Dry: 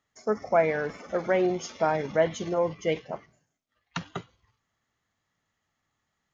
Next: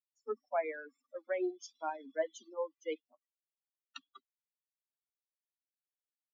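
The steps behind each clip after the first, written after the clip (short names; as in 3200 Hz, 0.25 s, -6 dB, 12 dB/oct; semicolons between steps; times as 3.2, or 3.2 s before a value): per-bin expansion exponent 3; steep high-pass 240 Hz 96 dB/oct; gain -7.5 dB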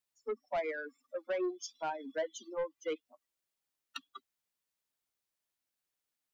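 in parallel at +2.5 dB: compressor, threshold -41 dBFS, peak gain reduction 12.5 dB; on the sum: soft clip -28.5 dBFS, distortion -13 dB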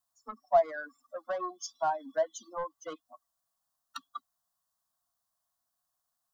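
fixed phaser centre 1000 Hz, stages 4; small resonant body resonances 700/1100/2500 Hz, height 11 dB, ringing for 35 ms; gain +5.5 dB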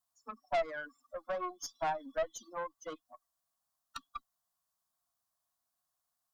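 tube stage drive 27 dB, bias 0.5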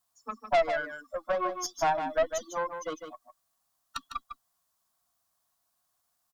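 echo 0.153 s -8 dB; gain +7.5 dB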